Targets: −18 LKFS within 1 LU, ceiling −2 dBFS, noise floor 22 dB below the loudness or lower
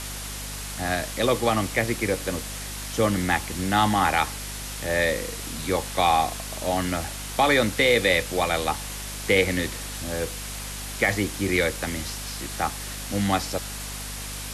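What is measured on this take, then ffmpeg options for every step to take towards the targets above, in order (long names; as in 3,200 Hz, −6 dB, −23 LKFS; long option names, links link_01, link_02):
mains hum 50 Hz; hum harmonics up to 250 Hz; level of the hum −36 dBFS; background noise floor −34 dBFS; target noise floor −47 dBFS; integrated loudness −25.0 LKFS; sample peak −8.0 dBFS; target loudness −18.0 LKFS
→ -af "bandreject=frequency=50:width_type=h:width=6,bandreject=frequency=100:width_type=h:width=6,bandreject=frequency=150:width_type=h:width=6,bandreject=frequency=200:width_type=h:width=6,bandreject=frequency=250:width_type=h:width=6"
-af "afftdn=noise_reduction=13:noise_floor=-34"
-af "volume=7dB,alimiter=limit=-2dB:level=0:latency=1"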